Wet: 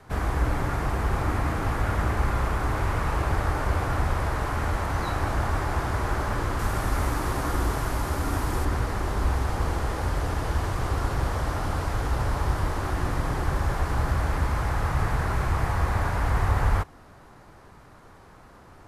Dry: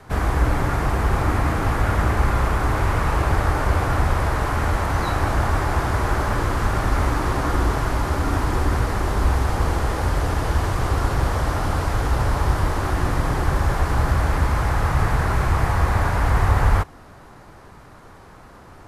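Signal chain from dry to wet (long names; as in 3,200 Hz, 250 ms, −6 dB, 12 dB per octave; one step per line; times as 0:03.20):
0:06.59–0:08.65: high-shelf EQ 8,500 Hz +10.5 dB
level −5.5 dB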